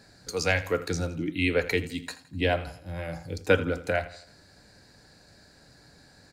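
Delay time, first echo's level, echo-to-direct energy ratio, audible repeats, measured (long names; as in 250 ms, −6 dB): 83 ms, −16.0 dB, −15.0 dB, 3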